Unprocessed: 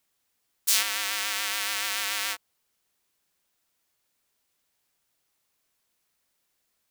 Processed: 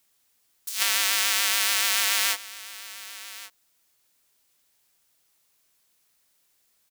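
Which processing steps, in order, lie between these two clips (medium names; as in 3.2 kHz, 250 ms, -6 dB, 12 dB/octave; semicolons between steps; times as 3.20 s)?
treble shelf 3.1 kHz +5.5 dB; compressor with a negative ratio -23 dBFS, ratio -0.5; delay 1132 ms -17 dB; trim +1.5 dB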